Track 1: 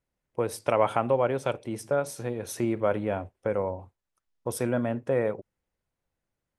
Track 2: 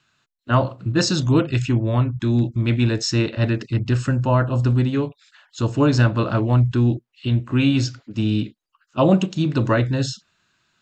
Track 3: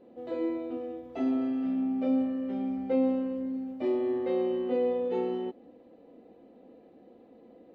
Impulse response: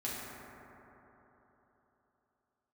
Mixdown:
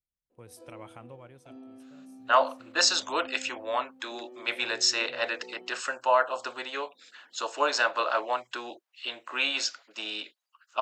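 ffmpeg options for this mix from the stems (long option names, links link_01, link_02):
-filter_complex "[0:a]equalizer=frequency=610:width=0.34:gain=-14,volume=-11dB,afade=type=out:start_time=1.13:duration=0.53:silence=0.223872[link_01];[1:a]highpass=frequency=610:width=0.5412,highpass=frequency=610:width=1.3066,adelay=1800,volume=1dB[link_02];[2:a]highpass=frequency=320:poles=1,bandreject=frequency=2000:width=12,adelay=300,volume=-16dB[link_03];[link_01][link_02][link_03]amix=inputs=3:normalize=0"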